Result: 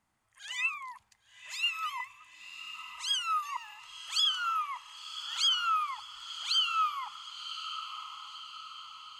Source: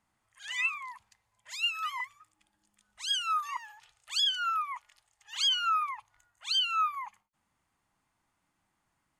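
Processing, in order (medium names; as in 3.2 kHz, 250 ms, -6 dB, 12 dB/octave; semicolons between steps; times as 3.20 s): dynamic bell 1.8 kHz, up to -6 dB, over -50 dBFS, Q 3; echo that smears into a reverb 1056 ms, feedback 54%, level -10.5 dB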